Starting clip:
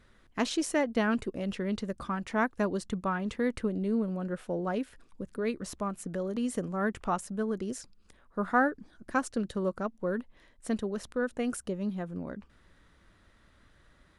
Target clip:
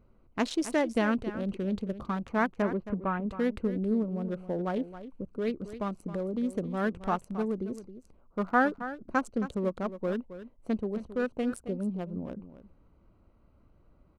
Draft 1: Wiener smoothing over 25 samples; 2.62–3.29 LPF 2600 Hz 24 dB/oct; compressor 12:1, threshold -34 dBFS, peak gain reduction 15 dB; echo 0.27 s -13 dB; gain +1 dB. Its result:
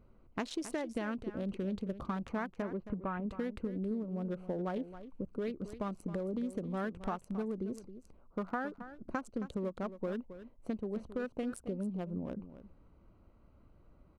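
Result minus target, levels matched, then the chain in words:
compressor: peak gain reduction +15 dB
Wiener smoothing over 25 samples; 2.62–3.29 LPF 2600 Hz 24 dB/oct; echo 0.27 s -13 dB; gain +1 dB

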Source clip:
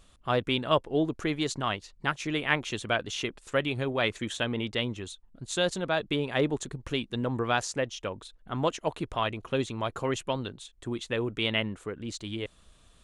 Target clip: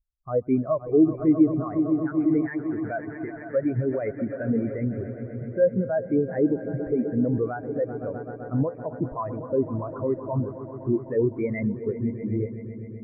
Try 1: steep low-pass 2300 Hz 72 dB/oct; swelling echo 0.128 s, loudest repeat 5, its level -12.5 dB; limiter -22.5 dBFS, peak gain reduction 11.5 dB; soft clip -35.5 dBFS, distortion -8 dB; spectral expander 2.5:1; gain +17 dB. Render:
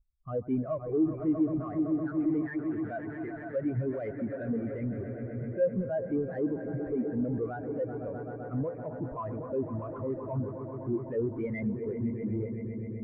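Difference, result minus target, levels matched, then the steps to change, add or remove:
soft clip: distortion +13 dB
change: soft clip -23.5 dBFS, distortion -21 dB

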